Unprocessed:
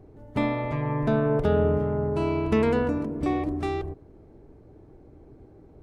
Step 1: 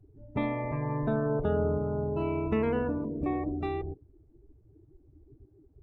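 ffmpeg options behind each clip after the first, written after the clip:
ffmpeg -i in.wav -filter_complex "[0:a]afftdn=noise_reduction=22:noise_floor=-37,asplit=2[link_01][link_02];[link_02]acompressor=threshold=-32dB:ratio=6,volume=2.5dB[link_03];[link_01][link_03]amix=inputs=2:normalize=0,volume=-8dB" out.wav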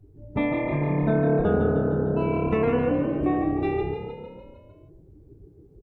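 ffmpeg -i in.wav -filter_complex "[0:a]asplit=2[link_01][link_02];[link_02]adelay=20,volume=-5dB[link_03];[link_01][link_03]amix=inputs=2:normalize=0,asplit=2[link_04][link_05];[link_05]asplit=7[link_06][link_07][link_08][link_09][link_10][link_11][link_12];[link_06]adelay=152,afreqshift=35,volume=-6dB[link_13];[link_07]adelay=304,afreqshift=70,volume=-10.9dB[link_14];[link_08]adelay=456,afreqshift=105,volume=-15.8dB[link_15];[link_09]adelay=608,afreqshift=140,volume=-20.6dB[link_16];[link_10]adelay=760,afreqshift=175,volume=-25.5dB[link_17];[link_11]adelay=912,afreqshift=210,volume=-30.4dB[link_18];[link_12]adelay=1064,afreqshift=245,volume=-35.3dB[link_19];[link_13][link_14][link_15][link_16][link_17][link_18][link_19]amix=inputs=7:normalize=0[link_20];[link_04][link_20]amix=inputs=2:normalize=0,volume=4dB" out.wav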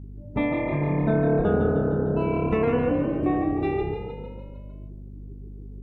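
ffmpeg -i in.wav -af "aeval=exprs='val(0)+0.0126*(sin(2*PI*50*n/s)+sin(2*PI*2*50*n/s)/2+sin(2*PI*3*50*n/s)/3+sin(2*PI*4*50*n/s)/4+sin(2*PI*5*50*n/s)/5)':channel_layout=same" out.wav

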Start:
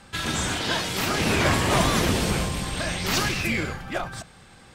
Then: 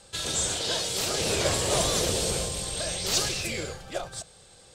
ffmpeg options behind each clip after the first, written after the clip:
ffmpeg -i in.wav -af "equalizer=frequency=250:width_type=o:width=1:gain=-8,equalizer=frequency=500:width_type=o:width=1:gain=10,equalizer=frequency=1000:width_type=o:width=1:gain=-4,equalizer=frequency=2000:width_type=o:width=1:gain=-5,equalizer=frequency=4000:width_type=o:width=1:gain=6,equalizer=frequency=8000:width_type=o:width=1:gain=11,volume=-6.5dB" out.wav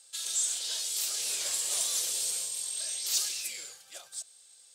ffmpeg -i in.wav -af "acontrast=23,aderivative,volume=-5.5dB" out.wav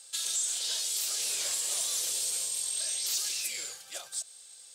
ffmpeg -i in.wav -filter_complex "[0:a]asplit=2[link_01][link_02];[link_02]alimiter=limit=-23.5dB:level=0:latency=1,volume=3dB[link_03];[link_01][link_03]amix=inputs=2:normalize=0,acompressor=threshold=-30dB:ratio=2,volume=-2dB" out.wav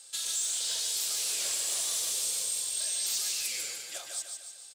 ffmpeg -i in.wav -af "asoftclip=type=tanh:threshold=-24.5dB,aecho=1:1:149|298|447|596|745|894:0.562|0.281|0.141|0.0703|0.0351|0.0176" out.wav

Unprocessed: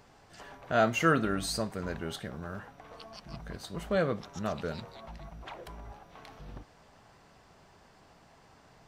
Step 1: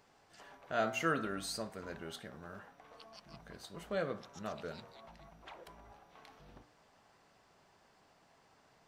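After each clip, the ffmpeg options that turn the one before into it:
ffmpeg -i in.wav -af "lowshelf=frequency=150:gain=-10,bandreject=frequency=59.86:width_type=h:width=4,bandreject=frequency=119.72:width_type=h:width=4,bandreject=frequency=179.58:width_type=h:width=4,bandreject=frequency=239.44:width_type=h:width=4,bandreject=frequency=299.3:width_type=h:width=4,bandreject=frequency=359.16:width_type=h:width=4,bandreject=frequency=419.02:width_type=h:width=4,bandreject=frequency=478.88:width_type=h:width=4,bandreject=frequency=538.74:width_type=h:width=4,bandreject=frequency=598.6:width_type=h:width=4,bandreject=frequency=658.46:width_type=h:width=4,bandreject=frequency=718.32:width_type=h:width=4,bandreject=frequency=778.18:width_type=h:width=4,bandreject=frequency=838.04:width_type=h:width=4,bandreject=frequency=897.9:width_type=h:width=4,bandreject=frequency=957.76:width_type=h:width=4,bandreject=frequency=1017.62:width_type=h:width=4,bandreject=frequency=1077.48:width_type=h:width=4,bandreject=frequency=1137.34:width_type=h:width=4,bandreject=frequency=1197.2:width_type=h:width=4,bandreject=frequency=1257.06:width_type=h:width=4,bandreject=frequency=1316.92:width_type=h:width=4,bandreject=frequency=1376.78:width_type=h:width=4,bandreject=frequency=1436.64:width_type=h:width=4,bandreject=frequency=1496.5:width_type=h:width=4,bandreject=frequency=1556.36:width_type=h:width=4,bandreject=frequency=1616.22:width_type=h:width=4,bandreject=frequency=1676.08:width_type=h:width=4,bandreject=frequency=1735.94:width_type=h:width=4,bandreject=frequency=1795.8:width_type=h:width=4,bandreject=frequency=1855.66:width_type=h:width=4,volume=-6.5dB" out.wav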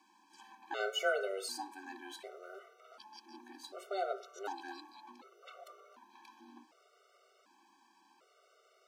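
ffmpeg -i in.wav -af "bandreject=frequency=1700:width=5.2,afreqshift=190,afftfilt=real='re*gt(sin(2*PI*0.67*pts/sr)*(1-2*mod(floor(b*sr/1024/380),2)),0)':imag='im*gt(sin(2*PI*0.67*pts/sr)*(1-2*mod(floor(b*sr/1024/380),2)),0)':win_size=1024:overlap=0.75,volume=3dB" out.wav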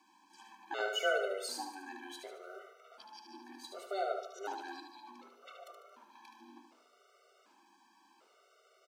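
ffmpeg -i in.wav -af "aecho=1:1:74|148|222|296|370:0.473|0.208|0.0916|0.0403|0.0177" out.wav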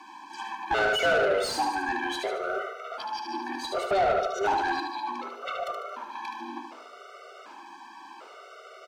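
ffmpeg -i in.wav -filter_complex "[0:a]asplit=2[link_01][link_02];[link_02]alimiter=level_in=6.5dB:limit=-24dB:level=0:latency=1:release=120,volume=-6.5dB,volume=2dB[link_03];[link_01][link_03]amix=inputs=2:normalize=0,asplit=2[link_04][link_05];[link_05]highpass=frequency=720:poles=1,volume=21dB,asoftclip=type=tanh:threshold=-17dB[link_06];[link_04][link_06]amix=inputs=2:normalize=0,lowpass=frequency=1600:poles=1,volume=-6dB,volume=2dB" out.wav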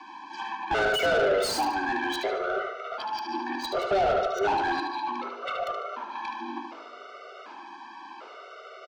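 ffmpeg -i in.wav -filter_complex "[0:a]aecho=1:1:225|450|675:0.0708|0.0297|0.0125,acrossover=split=360|450|6100[link_01][link_02][link_03][link_04];[link_03]asoftclip=type=tanh:threshold=-25dB[link_05];[link_04]acrusher=bits=6:mix=0:aa=0.000001[link_06];[link_01][link_02][link_05][link_06]amix=inputs=4:normalize=0,volume=2.5dB" out.wav

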